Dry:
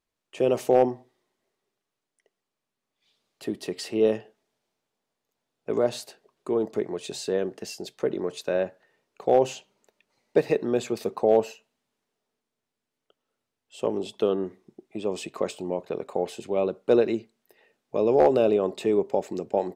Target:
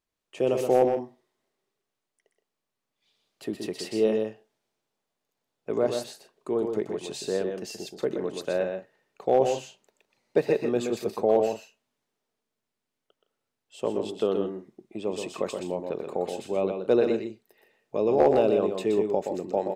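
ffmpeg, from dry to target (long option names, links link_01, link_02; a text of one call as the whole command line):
ffmpeg -i in.wav -af "aecho=1:1:124|161:0.501|0.2,volume=-2dB" out.wav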